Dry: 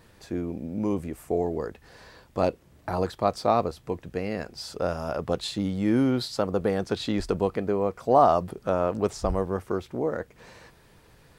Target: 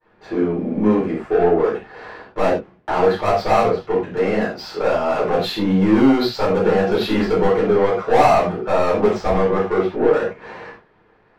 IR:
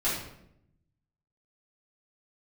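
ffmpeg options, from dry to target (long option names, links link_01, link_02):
-filter_complex "[0:a]asplit=2[link_01][link_02];[link_02]highpass=frequency=720:poles=1,volume=25dB,asoftclip=type=tanh:threshold=-6dB[link_03];[link_01][link_03]amix=inputs=2:normalize=0,lowpass=frequency=1800:poles=1,volume=-6dB,agate=range=-33dB:threshold=-35dB:ratio=3:detection=peak,adynamicsmooth=sensitivity=2.5:basefreq=2600[link_04];[1:a]atrim=start_sample=2205,atrim=end_sample=6174,asetrate=52920,aresample=44100[link_05];[link_04][link_05]afir=irnorm=-1:irlink=0,volume=-7dB"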